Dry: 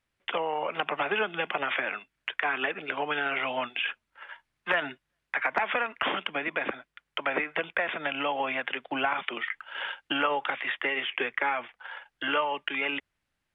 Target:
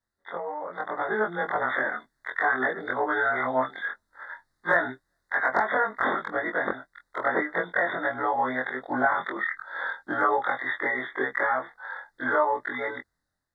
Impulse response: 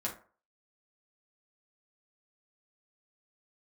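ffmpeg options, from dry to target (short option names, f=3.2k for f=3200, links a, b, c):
-af "afftfilt=real='re':imag='-im':win_size=2048:overlap=0.75,asuperstop=centerf=2700:order=12:qfactor=1.7,dynaudnorm=f=760:g=3:m=9dB"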